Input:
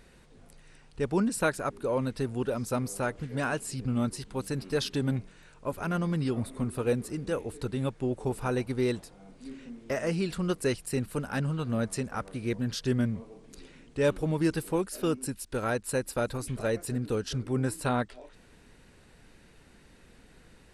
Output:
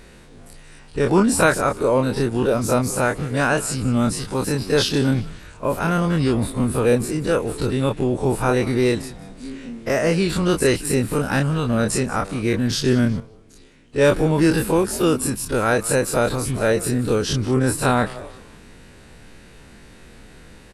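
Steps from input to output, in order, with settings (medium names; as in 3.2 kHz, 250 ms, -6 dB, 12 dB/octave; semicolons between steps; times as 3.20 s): every event in the spectrogram widened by 60 ms; frequency-shifting echo 182 ms, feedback 42%, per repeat -110 Hz, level -18 dB; 13.20–14.05 s: upward expansion 1.5:1, over -42 dBFS; trim +7.5 dB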